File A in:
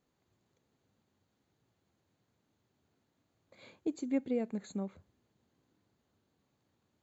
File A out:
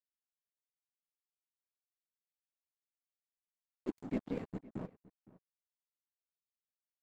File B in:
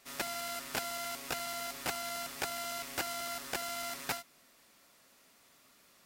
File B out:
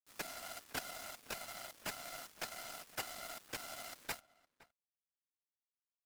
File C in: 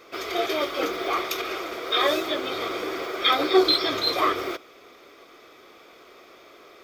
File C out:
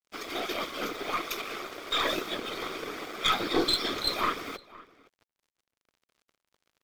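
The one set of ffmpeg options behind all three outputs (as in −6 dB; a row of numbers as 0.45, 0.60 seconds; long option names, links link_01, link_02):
-filter_complex "[0:a]acrossover=split=410|760|3600[link_01][link_02][link_03][link_04];[link_02]acompressor=threshold=-45dB:ratio=6[link_05];[link_01][link_05][link_03][link_04]amix=inputs=4:normalize=0,afftfilt=real='hypot(re,im)*cos(2*PI*random(0))':imag='hypot(re,im)*sin(2*PI*random(1))':win_size=512:overlap=0.75,aeval=exprs='0.224*(cos(1*acos(clip(val(0)/0.224,-1,1)))-cos(1*PI/2))+0.0282*(cos(4*acos(clip(val(0)/0.224,-1,1)))-cos(4*PI/2))+0.0178*(cos(5*acos(clip(val(0)/0.224,-1,1)))-cos(5*PI/2))':channel_layout=same,aeval=exprs='sgn(val(0))*max(abs(val(0))-0.00562,0)':channel_layout=same,asplit=2[link_06][link_07];[link_07]adelay=513.1,volume=-20dB,highshelf=frequency=4000:gain=-11.5[link_08];[link_06][link_08]amix=inputs=2:normalize=0"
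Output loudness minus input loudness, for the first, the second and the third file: −5.5, −8.0, −6.0 LU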